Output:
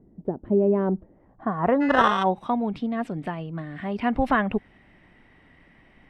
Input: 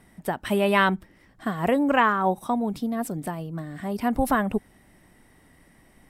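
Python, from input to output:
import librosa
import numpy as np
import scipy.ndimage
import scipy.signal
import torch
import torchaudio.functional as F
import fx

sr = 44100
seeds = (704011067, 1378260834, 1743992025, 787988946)

y = fx.sample_hold(x, sr, seeds[0], rate_hz=2300.0, jitter_pct=0, at=(1.8, 2.22), fade=0.02)
y = fx.filter_sweep_lowpass(y, sr, from_hz=390.0, to_hz=2700.0, start_s=0.74, end_s=2.27, q=1.8)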